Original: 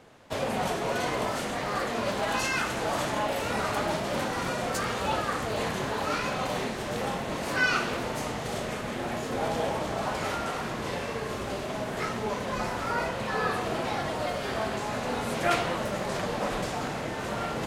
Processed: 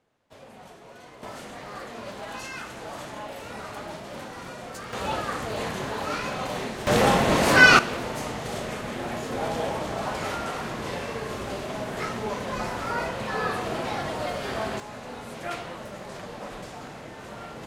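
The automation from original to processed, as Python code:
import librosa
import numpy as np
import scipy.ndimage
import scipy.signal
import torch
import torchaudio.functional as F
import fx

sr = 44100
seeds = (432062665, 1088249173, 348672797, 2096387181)

y = fx.gain(x, sr, db=fx.steps((0.0, -18.0), (1.23, -8.5), (4.93, -0.5), (6.87, 11.5), (7.79, 0.5), (14.8, -8.0)))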